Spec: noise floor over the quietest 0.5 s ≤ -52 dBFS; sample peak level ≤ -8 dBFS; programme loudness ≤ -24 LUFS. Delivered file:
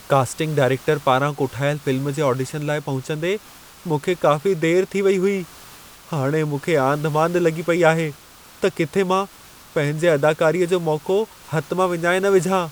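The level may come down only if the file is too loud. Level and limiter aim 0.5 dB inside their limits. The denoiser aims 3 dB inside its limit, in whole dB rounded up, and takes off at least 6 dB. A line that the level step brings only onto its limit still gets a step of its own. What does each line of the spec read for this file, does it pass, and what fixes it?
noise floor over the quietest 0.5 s -45 dBFS: fail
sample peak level -2.0 dBFS: fail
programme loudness -20.5 LUFS: fail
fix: denoiser 6 dB, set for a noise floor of -45 dBFS; gain -4 dB; limiter -8.5 dBFS

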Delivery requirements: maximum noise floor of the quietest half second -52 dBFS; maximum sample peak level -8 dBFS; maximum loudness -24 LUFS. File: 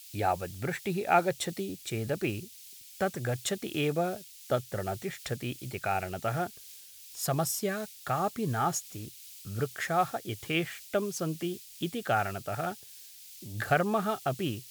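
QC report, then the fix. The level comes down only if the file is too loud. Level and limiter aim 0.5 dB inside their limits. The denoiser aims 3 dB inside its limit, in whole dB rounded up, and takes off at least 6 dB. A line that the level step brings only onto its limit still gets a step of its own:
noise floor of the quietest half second -50 dBFS: fail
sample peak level -11.0 dBFS: OK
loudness -32.0 LUFS: OK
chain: denoiser 6 dB, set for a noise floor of -50 dBFS

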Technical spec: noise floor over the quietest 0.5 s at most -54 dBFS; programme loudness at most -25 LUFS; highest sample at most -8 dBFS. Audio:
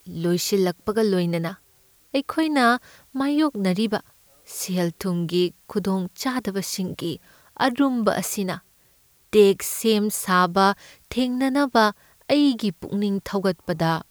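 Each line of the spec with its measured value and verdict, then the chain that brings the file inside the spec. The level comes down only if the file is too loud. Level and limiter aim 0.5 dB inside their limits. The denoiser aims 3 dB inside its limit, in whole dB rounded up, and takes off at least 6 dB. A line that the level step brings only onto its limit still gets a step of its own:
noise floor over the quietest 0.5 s -59 dBFS: OK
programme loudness -23.0 LUFS: fail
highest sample -4.5 dBFS: fail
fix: gain -2.5 dB; limiter -8.5 dBFS

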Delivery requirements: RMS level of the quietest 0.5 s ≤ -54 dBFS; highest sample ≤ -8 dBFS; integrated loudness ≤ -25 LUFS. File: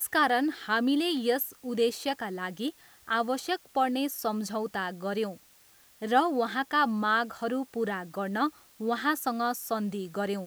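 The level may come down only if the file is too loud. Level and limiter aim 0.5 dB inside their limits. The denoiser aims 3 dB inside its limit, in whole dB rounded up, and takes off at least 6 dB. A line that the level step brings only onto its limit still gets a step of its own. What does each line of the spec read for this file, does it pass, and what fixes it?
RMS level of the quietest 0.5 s -59 dBFS: OK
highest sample -11.0 dBFS: OK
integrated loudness -29.5 LUFS: OK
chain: none

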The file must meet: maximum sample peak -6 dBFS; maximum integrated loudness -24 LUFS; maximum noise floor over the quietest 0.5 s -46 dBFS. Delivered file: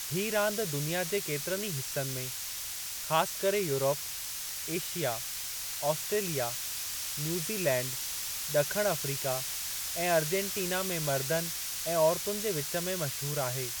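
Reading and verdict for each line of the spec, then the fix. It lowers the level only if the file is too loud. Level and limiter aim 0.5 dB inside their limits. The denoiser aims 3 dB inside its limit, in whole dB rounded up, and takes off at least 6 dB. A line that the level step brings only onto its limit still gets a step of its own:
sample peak -13.0 dBFS: OK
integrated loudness -31.0 LUFS: OK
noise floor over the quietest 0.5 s -38 dBFS: fail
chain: denoiser 11 dB, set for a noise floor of -38 dBFS

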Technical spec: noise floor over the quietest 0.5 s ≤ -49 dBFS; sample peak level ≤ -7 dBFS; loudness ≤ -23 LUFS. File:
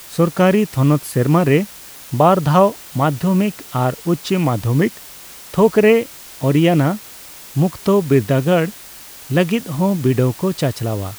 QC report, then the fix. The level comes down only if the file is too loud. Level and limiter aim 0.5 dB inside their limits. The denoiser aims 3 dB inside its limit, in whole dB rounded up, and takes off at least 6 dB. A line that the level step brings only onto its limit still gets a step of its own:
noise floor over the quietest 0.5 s -38 dBFS: fail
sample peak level -1.5 dBFS: fail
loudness -17.0 LUFS: fail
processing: denoiser 8 dB, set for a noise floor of -38 dBFS; gain -6.5 dB

